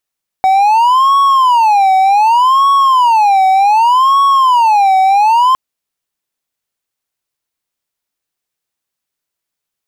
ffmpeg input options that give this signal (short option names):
-f lavfi -i "aevalsrc='0.631*(1-4*abs(mod((934.5*t-175.5/(2*PI*0.66)*sin(2*PI*0.66*t))+0.25,1)-0.5))':d=5.11:s=44100"